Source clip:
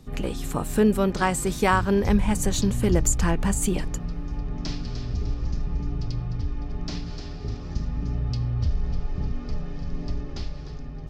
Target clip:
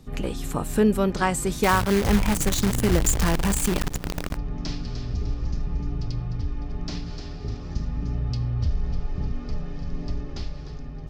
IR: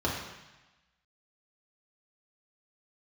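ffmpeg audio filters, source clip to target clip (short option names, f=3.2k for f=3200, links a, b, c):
-filter_complex "[0:a]asettb=1/sr,asplit=3[a][b][c];[a]atrim=end=1.634[d];[b]atrim=start=1.63:end=4.37,asetpts=PTS-STARTPTS,afade=t=in:d=0.004:c=qsin,afade=t=out:st=2.736:d=0.004:c=qsin,acrusher=bits=5:dc=4:mix=0:aa=0.000001[e];[c]atrim=start=4.366[f];[d][e]acrossfade=d=0.004:c1=hsin:c2=qsin[g];[g][f]acrossfade=d=0.004:c1=qsin:c2=hsin"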